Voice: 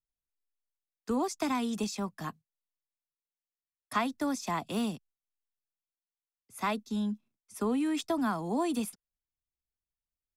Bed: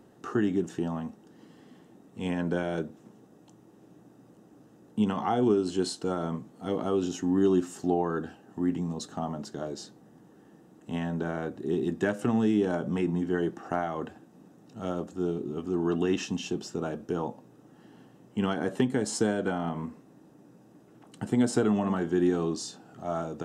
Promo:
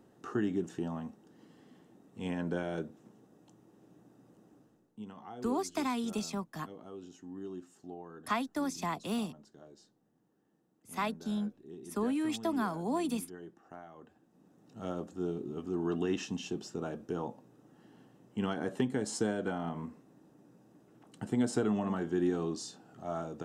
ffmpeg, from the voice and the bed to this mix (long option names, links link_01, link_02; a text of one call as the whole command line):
ffmpeg -i stem1.wav -i stem2.wav -filter_complex "[0:a]adelay=4350,volume=-2.5dB[link_01];[1:a]volume=8.5dB,afade=type=out:start_time=4.51:duration=0.39:silence=0.199526,afade=type=in:start_time=14.07:duration=0.73:silence=0.199526[link_02];[link_01][link_02]amix=inputs=2:normalize=0" out.wav